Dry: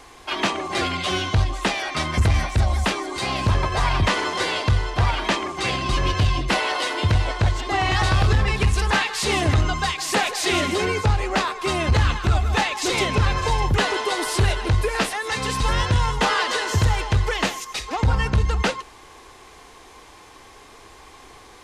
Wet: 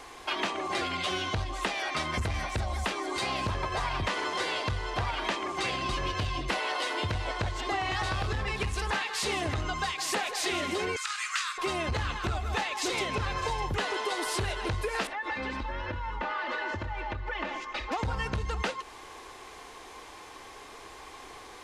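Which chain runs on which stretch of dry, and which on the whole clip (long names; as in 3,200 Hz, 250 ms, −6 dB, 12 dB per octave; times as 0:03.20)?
0:10.96–0:11.58: elliptic high-pass filter 1,200 Hz, stop band 50 dB + parametric band 7,900 Hz +10.5 dB 1.1 octaves + double-tracking delay 50 ms −12 dB
0:15.07–0:17.92: low-pass filter 2,200 Hz + comb filter 3.4 ms, depth 91% + downward compressor 5 to 1, threshold −28 dBFS
whole clip: bass and treble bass −6 dB, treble −2 dB; downward compressor 4 to 1, threshold −29 dBFS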